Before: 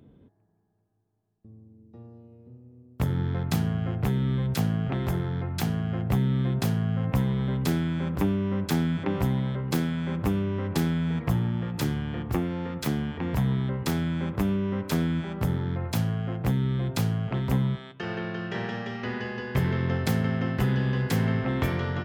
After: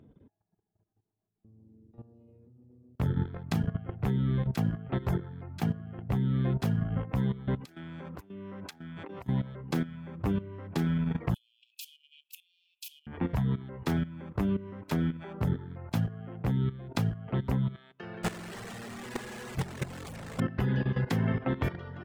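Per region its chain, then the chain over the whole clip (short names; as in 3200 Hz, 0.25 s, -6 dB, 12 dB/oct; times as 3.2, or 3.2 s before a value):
7.6–9.29 HPF 80 Hz 6 dB/oct + low shelf 290 Hz -7 dB + negative-ratio compressor -34 dBFS, ratio -0.5
11.34–13.07 Chebyshev high-pass 2500 Hz, order 8 + high shelf 7900 Hz +11.5 dB
18.23–20.4 infinite clipping + bell 8200 Hz +8 dB + echo 0.366 s -11.5 dB
whole clip: reverb removal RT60 0.82 s; high shelf 4000 Hz -10 dB; level quantiser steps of 15 dB; gain +3 dB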